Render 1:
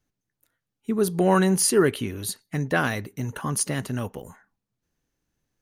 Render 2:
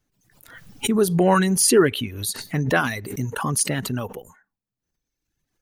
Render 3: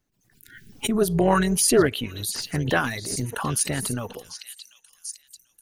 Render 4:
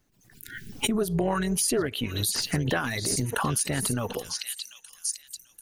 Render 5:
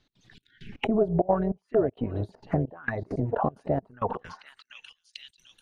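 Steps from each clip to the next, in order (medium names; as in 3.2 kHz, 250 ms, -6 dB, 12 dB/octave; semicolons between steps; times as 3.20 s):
reverb removal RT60 1.4 s; swell ahead of each attack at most 69 dB/s; trim +3.5 dB
repeats whose band climbs or falls 741 ms, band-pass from 4.1 kHz, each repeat 0.7 oct, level -4.5 dB; AM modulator 230 Hz, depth 35%; spectral selection erased 0.34–0.72 s, 450–1400 Hz
compression 6:1, threshold -30 dBFS, peak gain reduction 16.5 dB; trim +6.5 dB
trance gate "x.xxx...xx.xxxx" 198 bpm -24 dB; touch-sensitive low-pass 680–3900 Hz down, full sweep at -27 dBFS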